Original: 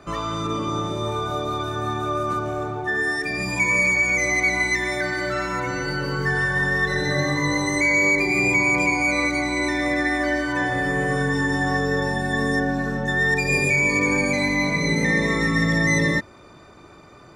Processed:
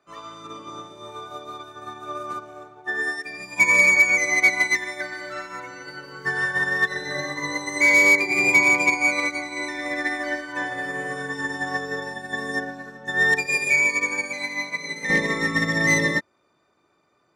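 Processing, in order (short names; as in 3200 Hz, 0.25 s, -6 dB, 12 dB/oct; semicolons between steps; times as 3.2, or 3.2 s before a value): HPF 490 Hz 6 dB/oct, from 13.46 s 1100 Hz, from 15.1 s 290 Hz; hard clip -15 dBFS, distortion -27 dB; upward expander 2.5:1, over -34 dBFS; gain +6.5 dB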